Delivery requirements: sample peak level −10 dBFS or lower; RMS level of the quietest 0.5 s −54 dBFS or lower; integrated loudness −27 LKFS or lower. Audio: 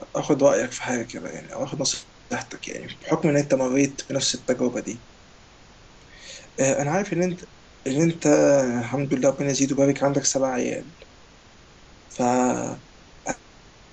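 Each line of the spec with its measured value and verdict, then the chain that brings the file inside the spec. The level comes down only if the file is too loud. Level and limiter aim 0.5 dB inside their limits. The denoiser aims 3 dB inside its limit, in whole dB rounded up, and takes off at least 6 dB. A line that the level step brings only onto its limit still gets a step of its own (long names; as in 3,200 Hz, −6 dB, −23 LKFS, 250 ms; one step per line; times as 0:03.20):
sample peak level −5.5 dBFS: out of spec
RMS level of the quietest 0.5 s −50 dBFS: out of spec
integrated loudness −23.5 LKFS: out of spec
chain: broadband denoise 6 dB, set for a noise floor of −50 dBFS
level −4 dB
brickwall limiter −10.5 dBFS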